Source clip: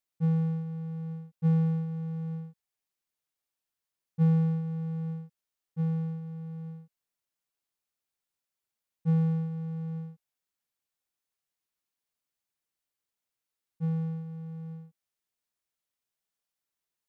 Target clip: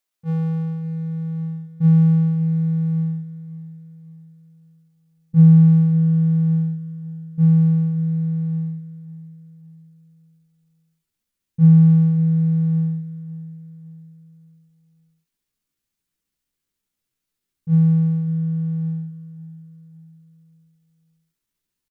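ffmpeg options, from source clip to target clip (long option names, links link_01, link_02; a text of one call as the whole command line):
ffmpeg -i in.wav -filter_complex "[0:a]equalizer=frequency=75:width=0.45:gain=-10,atempo=0.78,asubboost=boost=8:cutoff=230,acontrast=69,asplit=2[link_01][link_02];[link_02]aecho=0:1:556|1112|1668|2224:0.141|0.0607|0.0261|0.0112[link_03];[link_01][link_03]amix=inputs=2:normalize=0" out.wav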